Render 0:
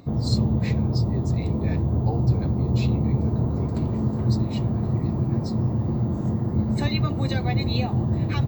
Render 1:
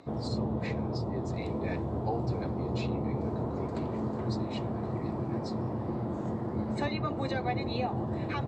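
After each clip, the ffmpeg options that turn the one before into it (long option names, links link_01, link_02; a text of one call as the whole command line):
ffmpeg -i in.wav -filter_complex "[0:a]lowpass=frequency=12000:width=0.5412,lowpass=frequency=12000:width=1.3066,bass=frequency=250:gain=-14,treble=frequency=4000:gain=-7,acrossover=split=530|1600[link_01][link_02][link_03];[link_03]alimiter=level_in=10.5dB:limit=-24dB:level=0:latency=1:release=481,volume=-10.5dB[link_04];[link_01][link_02][link_04]amix=inputs=3:normalize=0" out.wav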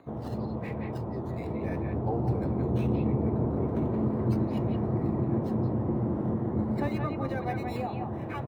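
ffmpeg -i in.wav -filter_complex "[0:a]acrossover=split=500|3100[link_01][link_02][link_03];[link_01]dynaudnorm=framelen=360:gausssize=11:maxgain=8dB[link_04];[link_02]aecho=1:1:175:0.668[link_05];[link_03]acrusher=samples=16:mix=1:aa=0.000001:lfo=1:lforange=9.6:lforate=0.38[link_06];[link_04][link_05][link_06]amix=inputs=3:normalize=0,volume=-2dB" out.wav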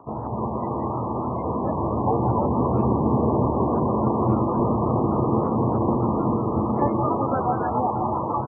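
ffmpeg -i in.wav -filter_complex "[0:a]lowpass=frequency=1000:width_type=q:width=4.9,asplit=2[link_01][link_02];[link_02]asplit=4[link_03][link_04][link_05][link_06];[link_03]adelay=286,afreqshift=120,volume=-4dB[link_07];[link_04]adelay=572,afreqshift=240,volume=-14.5dB[link_08];[link_05]adelay=858,afreqshift=360,volume=-24.9dB[link_09];[link_06]adelay=1144,afreqshift=480,volume=-35.4dB[link_10];[link_07][link_08][link_09][link_10]amix=inputs=4:normalize=0[link_11];[link_01][link_11]amix=inputs=2:normalize=0,volume=4dB" -ar 16000 -c:a libmp3lame -b:a 8k out.mp3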